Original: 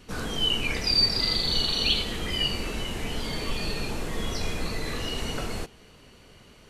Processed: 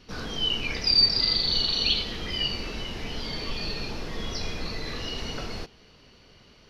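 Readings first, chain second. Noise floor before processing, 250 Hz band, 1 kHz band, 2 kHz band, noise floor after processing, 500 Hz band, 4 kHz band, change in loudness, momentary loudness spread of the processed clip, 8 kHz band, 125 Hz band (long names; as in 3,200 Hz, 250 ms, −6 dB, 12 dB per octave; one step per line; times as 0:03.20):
−53 dBFS, −3.0 dB, −3.0 dB, −2.0 dB, −55 dBFS, −3.0 dB, +1.0 dB, +1.0 dB, 15 LU, −5.0 dB, −3.0 dB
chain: high shelf with overshoot 6,500 Hz −8 dB, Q 3
level −3 dB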